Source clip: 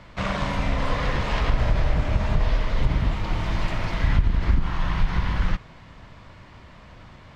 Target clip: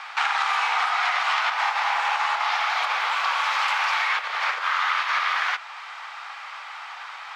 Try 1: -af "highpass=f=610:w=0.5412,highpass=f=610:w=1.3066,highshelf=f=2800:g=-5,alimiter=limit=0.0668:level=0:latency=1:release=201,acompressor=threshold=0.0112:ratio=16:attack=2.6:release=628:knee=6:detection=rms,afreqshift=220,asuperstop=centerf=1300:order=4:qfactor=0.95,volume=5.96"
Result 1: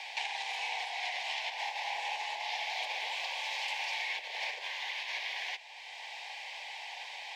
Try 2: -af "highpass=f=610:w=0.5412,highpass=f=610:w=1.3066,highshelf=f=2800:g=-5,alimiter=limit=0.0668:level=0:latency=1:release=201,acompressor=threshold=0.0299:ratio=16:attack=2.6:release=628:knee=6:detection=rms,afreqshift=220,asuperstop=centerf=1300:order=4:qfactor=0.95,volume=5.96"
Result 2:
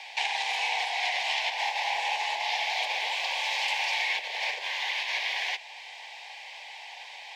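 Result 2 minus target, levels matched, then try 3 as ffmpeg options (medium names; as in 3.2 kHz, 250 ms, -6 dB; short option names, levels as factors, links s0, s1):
1 kHz band -4.0 dB
-af "highpass=f=610:w=0.5412,highpass=f=610:w=1.3066,highshelf=f=2800:g=-5,alimiter=limit=0.0668:level=0:latency=1:release=201,acompressor=threshold=0.0299:ratio=16:attack=2.6:release=628:knee=6:detection=rms,afreqshift=220,volume=5.96"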